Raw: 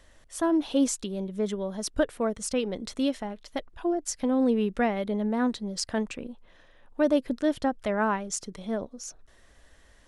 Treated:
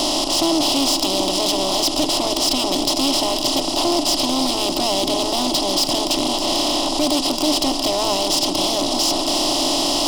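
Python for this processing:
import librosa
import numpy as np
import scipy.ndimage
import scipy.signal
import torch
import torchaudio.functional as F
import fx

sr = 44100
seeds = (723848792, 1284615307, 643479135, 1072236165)

p1 = fx.bin_compress(x, sr, power=0.2)
p2 = fx.band_shelf(p1, sr, hz=3900.0, db=13.0, octaves=1.1)
p3 = fx.rider(p2, sr, range_db=10, speed_s=0.5)
p4 = p2 + F.gain(torch.from_numpy(p3), -1.5).numpy()
p5 = 10.0 ** (-12.0 / 20.0) * np.tanh(p4 / 10.0 ** (-12.0 / 20.0))
p6 = fx.fixed_phaser(p5, sr, hz=320.0, stages=8)
y = p6 + fx.echo_alternate(p6, sr, ms=154, hz=1700.0, feedback_pct=84, wet_db=-14.0, dry=0)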